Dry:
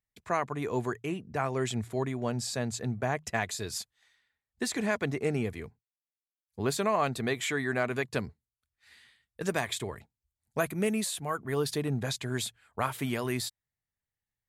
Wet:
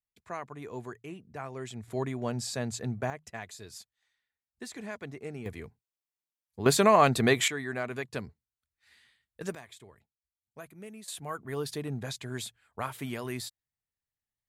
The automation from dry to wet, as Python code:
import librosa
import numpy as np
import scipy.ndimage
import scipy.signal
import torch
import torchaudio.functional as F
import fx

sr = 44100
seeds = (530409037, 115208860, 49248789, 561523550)

y = fx.gain(x, sr, db=fx.steps((0.0, -9.0), (1.88, -1.0), (3.1, -10.5), (5.46, -2.0), (6.66, 7.0), (7.48, -4.5), (9.55, -17.0), (11.08, -4.5)))